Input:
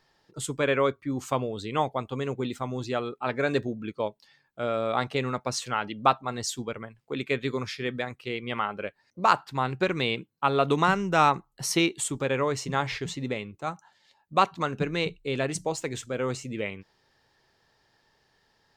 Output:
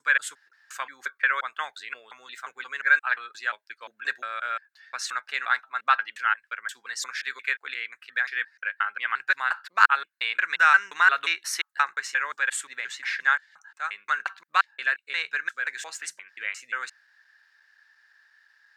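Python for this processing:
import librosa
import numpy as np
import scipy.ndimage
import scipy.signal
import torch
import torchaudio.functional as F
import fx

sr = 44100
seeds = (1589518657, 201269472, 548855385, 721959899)

y = fx.block_reorder(x, sr, ms=176.0, group=4)
y = fx.highpass_res(y, sr, hz=1600.0, q=7.8)
y = fx.notch(y, sr, hz=3200.0, q=18.0)
y = y * librosa.db_to_amplitude(-1.5)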